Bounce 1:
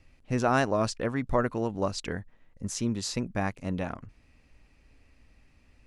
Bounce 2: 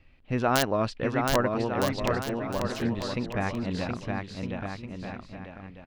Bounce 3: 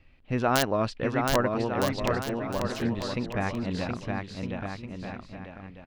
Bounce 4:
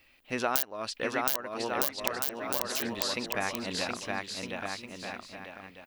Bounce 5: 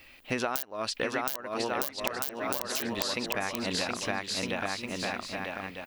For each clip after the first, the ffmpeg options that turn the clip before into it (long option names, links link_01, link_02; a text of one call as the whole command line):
ffmpeg -i in.wav -af "highshelf=frequency=4900:width_type=q:width=1.5:gain=-12.5,aeval=exprs='(mod(4.22*val(0)+1,2)-1)/4.22':channel_layout=same,aecho=1:1:720|1260|1665|1969|2197:0.631|0.398|0.251|0.158|0.1" out.wav
ffmpeg -i in.wav -af anull out.wav
ffmpeg -i in.wav -af "aemphasis=mode=production:type=riaa,acompressor=threshold=-26dB:ratio=6,equalizer=frequency=140:width=3:gain=-7.5,volume=1dB" out.wav
ffmpeg -i in.wav -af "acompressor=threshold=-37dB:ratio=5,volume=9dB" out.wav